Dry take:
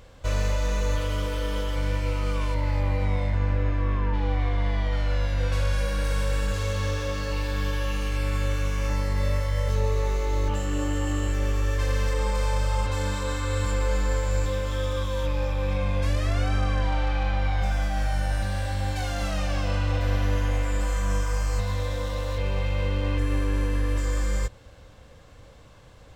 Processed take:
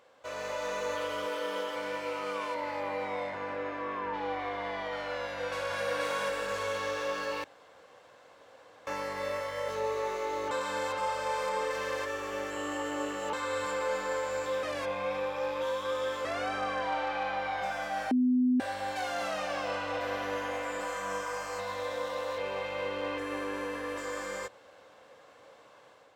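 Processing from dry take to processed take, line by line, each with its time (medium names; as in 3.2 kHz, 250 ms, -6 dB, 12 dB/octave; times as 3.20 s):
1.25–4.05 s: hum notches 50/100/150 Hz
5.22–5.81 s: echo throw 480 ms, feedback 50%, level -1 dB
7.44–8.87 s: room tone
10.51–13.33 s: reverse
14.63–16.25 s: reverse
18.11–18.60 s: bleep 251 Hz -12 dBFS
whole clip: high-pass 520 Hz 12 dB/octave; treble shelf 2.3 kHz -10 dB; level rider gain up to 6 dB; trim -3 dB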